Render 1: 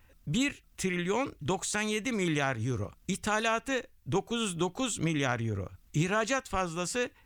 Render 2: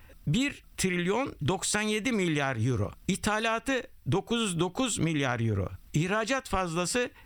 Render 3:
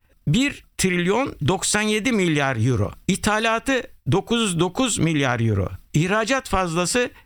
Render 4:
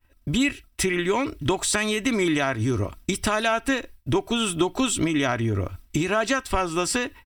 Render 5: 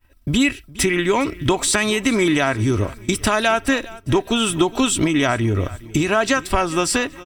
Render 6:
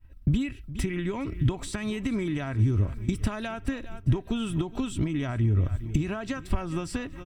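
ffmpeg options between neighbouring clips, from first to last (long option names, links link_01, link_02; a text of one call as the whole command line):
ffmpeg -i in.wav -af "bandreject=frequency=6700:width=5.2,acompressor=threshold=-32dB:ratio=6,volume=8dB" out.wav
ffmpeg -i in.wav -af "agate=range=-33dB:threshold=-41dB:ratio=3:detection=peak,volume=8dB" out.wav
ffmpeg -i in.wav -af "aecho=1:1:3.1:0.49,volume=-3.5dB" out.wav
ffmpeg -i in.wav -af "aecho=1:1:412|824|1236:0.1|0.041|0.0168,volume=5dB" out.wav
ffmpeg -i in.wav -af "acompressor=threshold=-24dB:ratio=6,bass=frequency=250:gain=15,treble=frequency=4000:gain=-6,volume=-8dB" out.wav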